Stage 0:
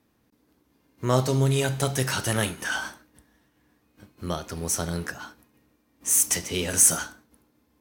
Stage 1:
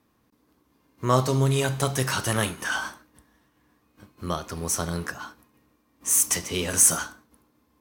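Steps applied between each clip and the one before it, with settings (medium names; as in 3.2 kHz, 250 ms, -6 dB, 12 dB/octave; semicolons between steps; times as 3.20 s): peaking EQ 1.1 kHz +7 dB 0.34 oct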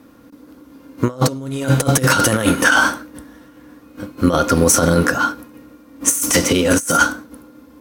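small resonant body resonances 280/510/1400 Hz, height 13 dB, ringing for 55 ms; compressor with a negative ratio -25 dBFS, ratio -0.5; loudness maximiser +12 dB; trim -1 dB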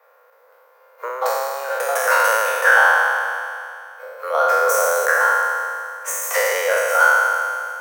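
spectral sustain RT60 2.42 s; steep high-pass 480 Hz 72 dB/octave; high-order bell 5.8 kHz -13 dB 2.4 oct; trim -3 dB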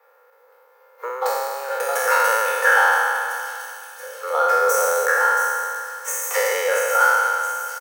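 band-stop 630 Hz, Q 15; comb 2.3 ms, depth 50%; feedback echo behind a high-pass 677 ms, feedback 64%, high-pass 4.1 kHz, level -7.5 dB; trim -2.5 dB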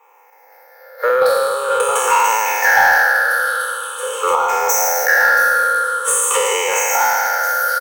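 drifting ripple filter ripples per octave 0.69, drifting -0.45 Hz, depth 17 dB; recorder AGC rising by 7.3 dB/s; in parallel at -3 dB: saturation -15 dBFS, distortion -12 dB; on the sum: trim -1 dB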